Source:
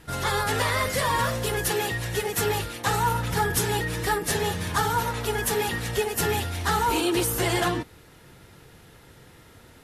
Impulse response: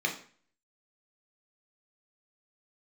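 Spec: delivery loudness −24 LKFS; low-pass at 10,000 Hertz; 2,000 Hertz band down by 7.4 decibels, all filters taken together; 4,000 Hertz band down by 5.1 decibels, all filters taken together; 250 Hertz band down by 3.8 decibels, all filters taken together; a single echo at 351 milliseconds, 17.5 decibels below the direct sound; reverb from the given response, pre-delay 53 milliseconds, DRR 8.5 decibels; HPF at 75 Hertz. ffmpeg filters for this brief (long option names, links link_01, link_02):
-filter_complex "[0:a]highpass=75,lowpass=10000,equalizer=frequency=250:width_type=o:gain=-6,equalizer=frequency=2000:width_type=o:gain=-8.5,equalizer=frequency=4000:width_type=o:gain=-3.5,aecho=1:1:351:0.133,asplit=2[link_01][link_02];[1:a]atrim=start_sample=2205,adelay=53[link_03];[link_02][link_03]afir=irnorm=-1:irlink=0,volume=-17dB[link_04];[link_01][link_04]amix=inputs=2:normalize=0,volume=4dB"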